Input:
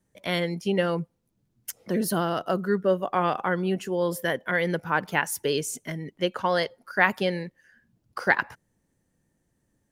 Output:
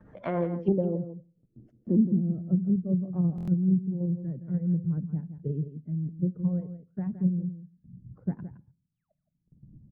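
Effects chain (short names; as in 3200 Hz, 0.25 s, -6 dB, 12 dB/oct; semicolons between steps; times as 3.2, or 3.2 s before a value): bin magnitudes rounded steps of 15 dB; in parallel at -2 dB: level quantiser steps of 24 dB; on the sum: painted sound fall, 8.86–9.12, 570–9900 Hz -30 dBFS; upward compressor, threshold -36 dBFS; low-pass sweep 1200 Hz -> 160 Hz, 0.39–2.48; gate -55 dBFS, range -16 dB; treble ducked by the level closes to 330 Hz, closed at -18.5 dBFS; on a send at -20 dB: reverb RT60 0.45 s, pre-delay 6 ms; on the sum: rotary speaker horn 7 Hz, later 0.75 Hz, at 1.17; echo 0.167 s -11.5 dB; stuck buffer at 3.36, samples 1024, times 4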